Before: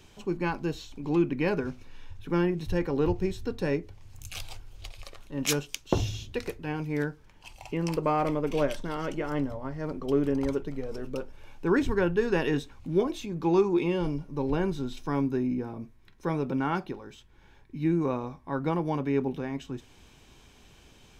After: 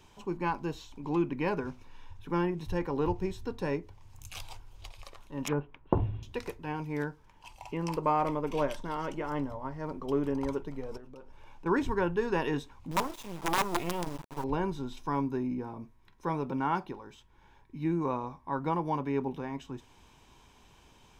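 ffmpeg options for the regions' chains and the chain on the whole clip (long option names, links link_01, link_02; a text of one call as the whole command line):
ffmpeg -i in.wav -filter_complex "[0:a]asettb=1/sr,asplit=3[link_01][link_02][link_03];[link_01]atrim=end=5.484[link_04];[link_02]atrim=start=5.48:end=6.23,asetpts=PTS-STARTPTS,afade=type=in:duration=0.004:curve=qsin,afade=type=out:start_time=0.746:duration=0.004:curve=qsin,lowpass=frequency=2000:width=0.5412,lowpass=frequency=2000:width=1.3066,tiltshelf=frequency=850:gain=4[link_05];[link_03]atrim=start=6.226[link_06];[link_04][link_05]acrossfade=duration=0.004:curve1=hsin:curve2=qsin[link_07];[link_07][link_06]acrossfade=duration=0.004:curve1=qsin:curve2=hsin,asettb=1/sr,asplit=3[link_08][link_09][link_10];[link_08]atrim=end=10.974[link_11];[link_09]atrim=start=10.97:end=11.66,asetpts=PTS-STARTPTS,afade=type=in:duration=0.004:curve=qsin,afade=type=out:start_time=0.686:duration=0.004:curve=qsin,highshelf=frequency=11000:gain=-9,acompressor=threshold=-40dB:ratio=12:attack=3.2:release=140:knee=1:detection=peak[link_12];[link_10]atrim=start=11.656[link_13];[link_11][link_12]acrossfade=duration=0.004:curve1=hsin:curve2=qsin[link_14];[link_14][link_13]acrossfade=duration=0.004:curve1=qsin:curve2=hsin,asettb=1/sr,asplit=3[link_15][link_16][link_17];[link_15]atrim=end=12.914[link_18];[link_16]atrim=start=12.91:end=14.44,asetpts=PTS-STARTPTS,afade=type=in:duration=0.004:curve=qsin,afade=type=out:start_time=1.526:duration=0.004:curve=qsin,acrusher=bits=4:dc=4:mix=0:aa=0.000001,aeval=exprs='(mod(7.08*val(0)+1,2)-1)/7.08':channel_layout=same[link_19];[link_17]atrim=start=14.436[link_20];[link_18][link_19]acrossfade=duration=0.004:curve1=hsin:curve2=qsin[link_21];[link_21][link_20]acrossfade=duration=0.004:curve1=qsin:curve2=hsin,equalizer=frequency=960:width=3.2:gain=10,bandreject=frequency=4300:width=27,volume=-4.5dB" out.wav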